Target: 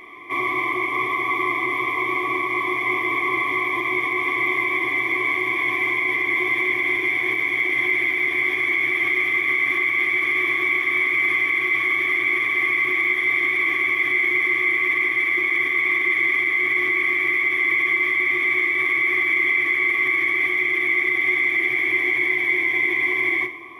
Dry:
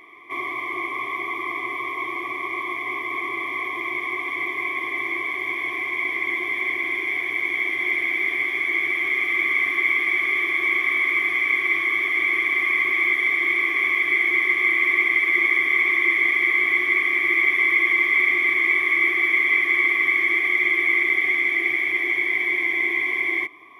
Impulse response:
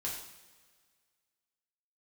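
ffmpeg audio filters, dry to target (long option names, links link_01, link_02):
-filter_complex "[0:a]alimiter=limit=-18.5dB:level=0:latency=1:release=71,asplit=2[link_01][link_02];[1:a]atrim=start_sample=2205,lowshelf=frequency=430:gain=10.5[link_03];[link_02][link_03]afir=irnorm=-1:irlink=0,volume=-6.5dB[link_04];[link_01][link_04]amix=inputs=2:normalize=0,volume=2.5dB"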